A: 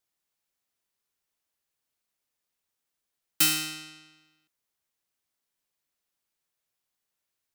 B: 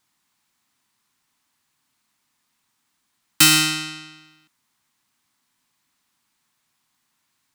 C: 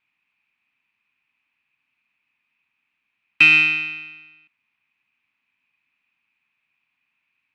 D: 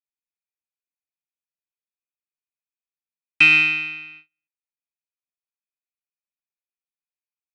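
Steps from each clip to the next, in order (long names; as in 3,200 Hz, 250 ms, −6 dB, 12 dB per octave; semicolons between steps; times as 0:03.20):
octave-band graphic EQ 125/250/500/1,000/2,000/4,000/8,000 Hz +8/+12/−7/+11/+5/+5/+5 dB; in parallel at +2 dB: brickwall limiter −14 dBFS, peak gain reduction 8 dB
low-pass with resonance 2,500 Hz, resonance Q 15; level −9 dB
notch filter 2,800 Hz, Q 12; noise gate −44 dBFS, range −33 dB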